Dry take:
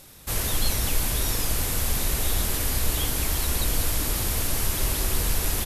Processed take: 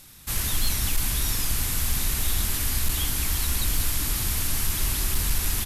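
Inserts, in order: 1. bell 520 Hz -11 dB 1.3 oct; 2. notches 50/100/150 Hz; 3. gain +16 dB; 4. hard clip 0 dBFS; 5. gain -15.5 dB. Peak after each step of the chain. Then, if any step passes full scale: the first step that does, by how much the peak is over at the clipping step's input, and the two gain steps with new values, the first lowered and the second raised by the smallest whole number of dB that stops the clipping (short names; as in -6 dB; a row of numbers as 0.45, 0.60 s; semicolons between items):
-11.5, -11.0, +5.0, 0.0, -15.5 dBFS; step 3, 5.0 dB; step 3 +11 dB, step 5 -10.5 dB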